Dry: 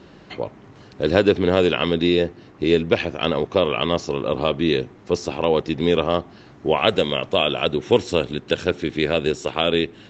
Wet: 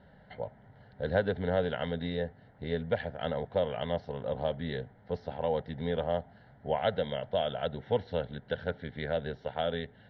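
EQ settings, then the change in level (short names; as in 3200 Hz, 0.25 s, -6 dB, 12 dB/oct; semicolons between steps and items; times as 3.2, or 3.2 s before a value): LPF 3100 Hz 12 dB/oct; air absorption 230 m; fixed phaser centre 1700 Hz, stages 8; -6.5 dB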